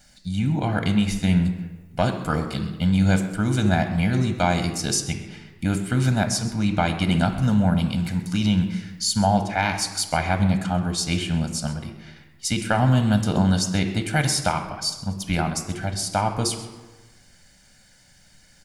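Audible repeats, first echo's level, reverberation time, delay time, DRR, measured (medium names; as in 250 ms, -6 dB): 1, -17.5 dB, 1.3 s, 131 ms, 6.5 dB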